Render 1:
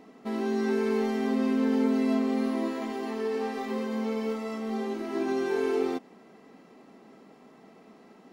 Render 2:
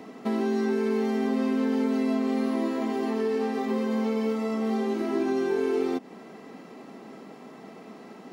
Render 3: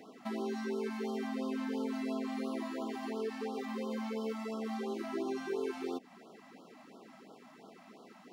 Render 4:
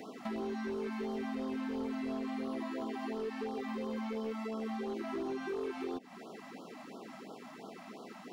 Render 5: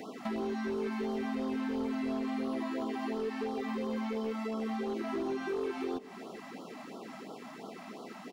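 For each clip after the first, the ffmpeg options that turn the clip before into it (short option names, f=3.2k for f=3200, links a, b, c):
-filter_complex "[0:a]highpass=75,acrossover=split=390|1200[a][b][c];[a]acompressor=threshold=-35dB:ratio=4[d];[b]acompressor=threshold=-42dB:ratio=4[e];[c]acompressor=threshold=-52dB:ratio=4[f];[d][e][f]amix=inputs=3:normalize=0,volume=8.5dB"
-af "lowshelf=f=340:g=-8,afftfilt=real='re*(1-between(b*sr/1024,370*pow(2100/370,0.5+0.5*sin(2*PI*2.9*pts/sr))/1.41,370*pow(2100/370,0.5+0.5*sin(2*PI*2.9*pts/sr))*1.41))':imag='im*(1-between(b*sr/1024,370*pow(2100/370,0.5+0.5*sin(2*PI*2.9*pts/sr))/1.41,370*pow(2100/370,0.5+0.5*sin(2*PI*2.9*pts/sr))*1.41))':win_size=1024:overlap=0.75,volume=-6dB"
-filter_complex "[0:a]acrossover=split=3900[a][b];[b]alimiter=level_in=34.5dB:limit=-24dB:level=0:latency=1,volume=-34.5dB[c];[a][c]amix=inputs=2:normalize=0,asoftclip=type=hard:threshold=-32.5dB,acompressor=threshold=-47dB:ratio=2,volume=6.5dB"
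-af "aecho=1:1:405:0.119,volume=3dB"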